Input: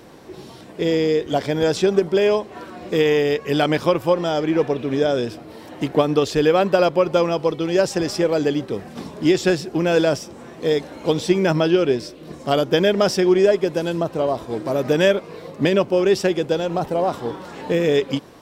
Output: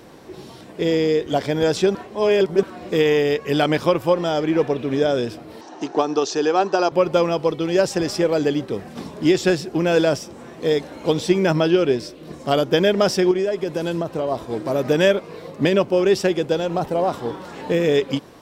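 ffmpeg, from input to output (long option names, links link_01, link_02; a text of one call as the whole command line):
ffmpeg -i in.wav -filter_complex "[0:a]asettb=1/sr,asplit=3[link_01][link_02][link_03];[link_01]atrim=end=5.614[link_04];[link_02]atrim=start=5.61:end=6.92,asetpts=PTS-STARTPTS,afade=type=in:duration=0.004:curve=qsin,afade=type=out:start_time=1.306:duration=0.004:curve=qsin,highpass=330,equalizer=frequency=370:width_type=q:width=4:gain=4,equalizer=frequency=540:width_type=q:width=4:gain=-8,equalizer=frequency=810:width_type=q:width=4:gain=6,equalizer=frequency=2100:width_type=q:width=4:gain=-9,equalizer=frequency=3200:width_type=q:width=4:gain=-5,equalizer=frequency=6000:width_type=q:width=4:gain=9,lowpass=frequency=7100:width=0.5412,lowpass=frequency=7100:width=1.3066[link_05];[link_03]atrim=start=6.916[link_06];[link_04][link_05]acrossfade=duration=0.004:curve1=hsin:curve2=qsin[link_07];[link_07][link_06]acrossfade=duration=0.004:curve1=qsin:curve2=hsin,asettb=1/sr,asplit=3[link_08][link_09][link_10];[link_08]atrim=end=13.314[link_11];[link_09]atrim=start=13.31:end=14.32,asetpts=PTS-STARTPTS,afade=type=in:duration=0.004:curve=qsin,afade=type=out:start_time=1.006:duration=0.004:curve=qsin,acompressor=threshold=-18dB:ratio=6:attack=3.2:release=140:knee=1:detection=peak[link_12];[link_10]atrim=start=14.316[link_13];[link_11][link_12]acrossfade=duration=0.004:curve1=hsin:curve2=qsin[link_14];[link_14][link_13]acrossfade=duration=0.004:curve1=qsin:curve2=hsin,asplit=3[link_15][link_16][link_17];[link_15]atrim=end=1.952[link_18];[link_16]atrim=start=1.948:end=2.632,asetpts=PTS-STARTPTS,areverse[link_19];[link_17]atrim=start=2.628[link_20];[link_18][link_19]acrossfade=duration=0.004:curve1=hsin:curve2=hsin[link_21];[link_21][link_20]acrossfade=duration=0.004:curve1=hsin:curve2=hsin" out.wav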